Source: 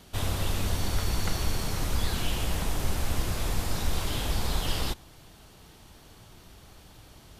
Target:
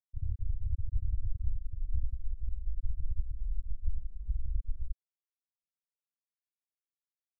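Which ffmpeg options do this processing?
-filter_complex "[0:a]asettb=1/sr,asplit=3[s0][s1][s2];[s0]atrim=end=1.844[s3];[s1]atrim=start=1.84:end=4.43,asetpts=PTS-STARTPTS,afade=t=in:d=0.004:c=qsin,afade=t=out:st=2.586:d=0.004:c=qsin,equalizer=f=92:t=o:w=0.22:g=-6.5[s4];[s2]atrim=start=4.426[s5];[s3][s4]acrossfade=d=0.004:c1=hsin:c2=qsin[s6];[s6][s5]acrossfade=d=0.004:c1=qsin:c2=hsin,aecho=1:1:466|932|1398:0.0891|0.0383|0.0165,afftfilt=real='re*gte(hypot(re,im),0.355)':imag='im*gte(hypot(re,im),0.355)':win_size=1024:overlap=0.75,volume=0.841"

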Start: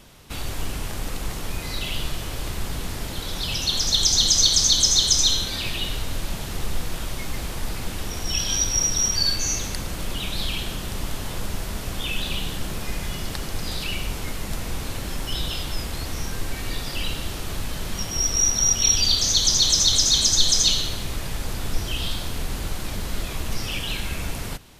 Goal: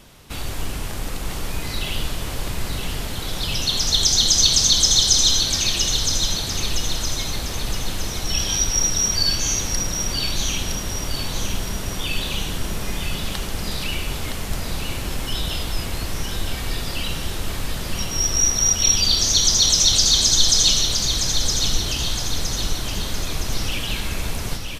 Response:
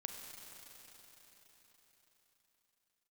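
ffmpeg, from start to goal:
-af "aecho=1:1:965|1930|2895|3860|4825|5790:0.501|0.246|0.12|0.059|0.0289|0.0142,volume=1.19"

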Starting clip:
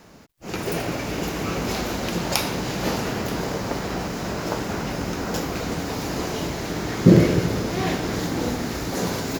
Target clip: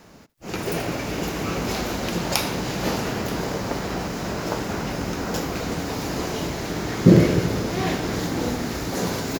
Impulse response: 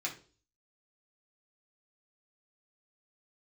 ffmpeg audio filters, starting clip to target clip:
-af "aecho=1:1:78:0.0631"

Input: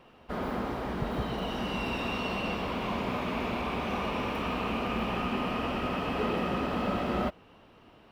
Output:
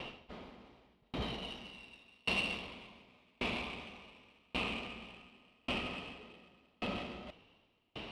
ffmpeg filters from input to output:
-af "areverse,acompressor=threshold=0.00562:ratio=12,areverse,aexciter=amount=6.4:drive=7.1:freq=2300,adynamicsmooth=sensitivity=3.5:basefreq=2000,aeval=exprs='val(0)*pow(10,-39*if(lt(mod(0.88*n/s,1),2*abs(0.88)/1000),1-mod(0.88*n/s,1)/(2*abs(0.88)/1000),(mod(0.88*n/s,1)-2*abs(0.88)/1000)/(1-2*abs(0.88)/1000))/20)':c=same,volume=4.22"

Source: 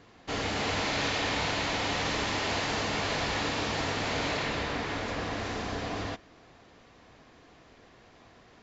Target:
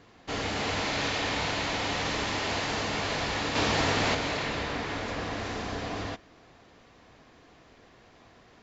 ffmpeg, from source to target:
-filter_complex "[0:a]asettb=1/sr,asplit=3[s0][s1][s2];[s0]atrim=end=3.554[s3];[s1]atrim=start=3.55:end=4.15,asetpts=PTS-STARTPTS,afade=t=in:d=0.004:c=qsin,afade=t=out:st=0.596:d=0.004:c=qsin,acontrast=28[s4];[s2]atrim=start=4.146[s5];[s3][s4]acrossfade=d=0.004:c1=hsin:c2=qsin[s6];[s6][s5]acrossfade=d=0.004:c1=qsin:c2=hsin"

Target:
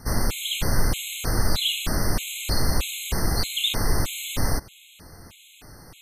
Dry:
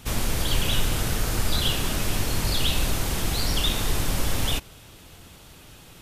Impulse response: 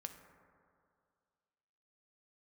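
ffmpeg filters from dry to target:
-af "afftfilt=real='re*gt(sin(2*PI*1.6*pts/sr)*(1-2*mod(floor(b*sr/1024/2100),2)),0)':imag='im*gt(sin(2*PI*1.6*pts/sr)*(1-2*mod(floor(b*sr/1024/2100),2)),0)':win_size=1024:overlap=0.75,volume=1.41"

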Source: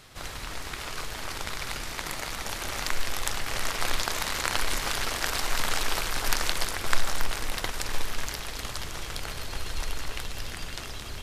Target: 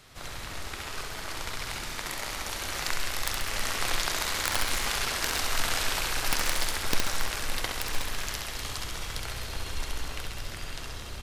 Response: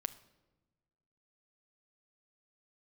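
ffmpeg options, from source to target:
-filter_complex "[0:a]acrossover=split=480|1500[s0][s1][s2];[s2]dynaudnorm=f=240:g=17:m=1.41[s3];[s0][s1][s3]amix=inputs=3:normalize=0,aeval=exprs='(mod(2.82*val(0)+1,2)-1)/2.82':c=same,aecho=1:1:67|134|201|268|335|402|469|536:0.562|0.332|0.196|0.115|0.0681|0.0402|0.0237|0.014,volume=0.708"

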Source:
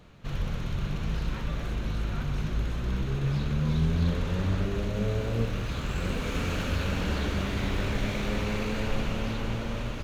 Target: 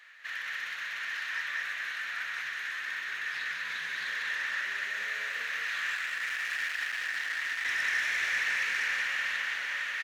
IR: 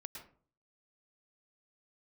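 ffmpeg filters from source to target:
-filter_complex "[0:a]asettb=1/sr,asplit=3[s0][s1][s2];[s0]atrim=end=5.954[s3];[s1]atrim=start=5.95:end=7.65,asetpts=PTS-STARTPTS,afade=t=in:d=0.004:c=qsin,afade=t=out:st=1.696:d=0.004:c=qsin,asoftclip=type=hard:threshold=0.0211[s4];[s2]atrim=start=7.646[s5];[s3][s4]acrossfade=d=0.004:c1=hsin:c2=qsin[s6];[s6][s5]acrossfade=d=0.004:c1=qsin:c2=hsin,highpass=f=1800:t=q:w=8.9,asoftclip=type=tanh:threshold=0.0501,asplit=2[s7][s8];[s8]aecho=0:1:194:0.631[s9];[s7][s9]amix=inputs=2:normalize=0"

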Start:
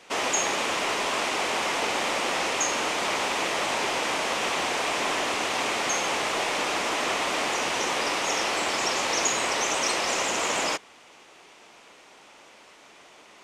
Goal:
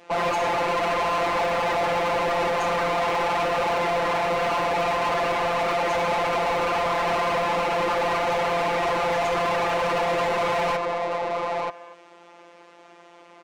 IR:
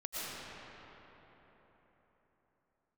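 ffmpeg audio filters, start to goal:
-filter_complex "[0:a]afwtdn=0.0398,tiltshelf=f=970:g=9.5,acrossover=split=480[s0][s1];[s0]alimiter=level_in=3.98:limit=0.0631:level=0:latency=1,volume=0.251[s2];[s2][s1]amix=inputs=2:normalize=0,asplit=2[s3][s4];[s4]adelay=932.9,volume=0.355,highshelf=f=4000:g=-21[s5];[s3][s5]amix=inputs=2:normalize=0,afftfilt=real='hypot(re,im)*cos(PI*b)':imag='0':win_size=1024:overlap=0.75,asplit=2[s6][s7];[s7]aecho=0:1:242:0.0668[s8];[s6][s8]amix=inputs=2:normalize=0,asplit=2[s9][s10];[s10]highpass=f=720:p=1,volume=44.7,asoftclip=type=tanh:threshold=0.2[s11];[s9][s11]amix=inputs=2:normalize=0,lowpass=f=4100:p=1,volume=0.501,volume=0.794"

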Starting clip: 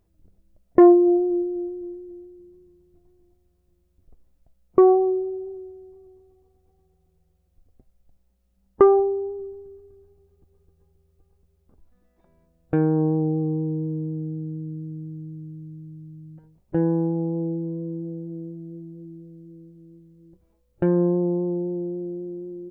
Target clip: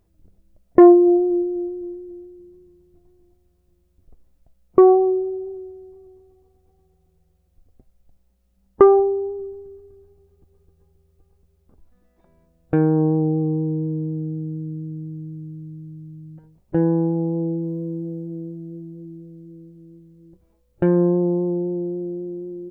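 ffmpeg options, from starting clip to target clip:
-filter_complex "[0:a]asplit=3[s0][s1][s2];[s0]afade=t=out:st=17.62:d=0.02[s3];[s1]adynamicequalizer=threshold=0.00708:dfrequency=1800:dqfactor=0.7:tfrequency=1800:tqfactor=0.7:attack=5:release=100:ratio=0.375:range=2.5:mode=boostabove:tftype=highshelf,afade=t=in:st=17.62:d=0.02,afade=t=out:st=21.5:d=0.02[s4];[s2]afade=t=in:st=21.5:d=0.02[s5];[s3][s4][s5]amix=inputs=3:normalize=0,volume=1.41"

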